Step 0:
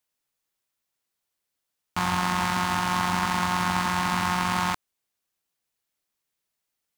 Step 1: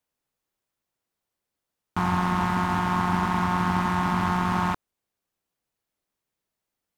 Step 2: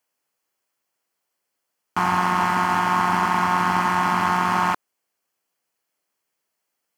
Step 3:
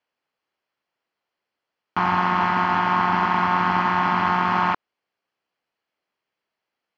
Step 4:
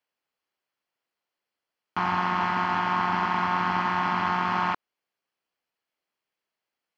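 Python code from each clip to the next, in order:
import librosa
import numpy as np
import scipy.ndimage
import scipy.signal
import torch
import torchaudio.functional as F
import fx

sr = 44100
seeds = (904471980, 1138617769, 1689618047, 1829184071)

y1 = fx.tilt_shelf(x, sr, db=5.0, hz=1400.0)
y1 = fx.slew_limit(y1, sr, full_power_hz=130.0)
y2 = fx.highpass(y1, sr, hz=520.0, slope=6)
y2 = fx.notch(y2, sr, hz=3700.0, q=6.1)
y2 = y2 * librosa.db_to_amplitude(7.0)
y3 = scipy.signal.sosfilt(scipy.signal.butter(4, 4300.0, 'lowpass', fs=sr, output='sos'), y2)
y4 = fx.high_shelf(y3, sr, hz=3900.0, db=6.0)
y4 = y4 * librosa.db_to_amplitude(-5.5)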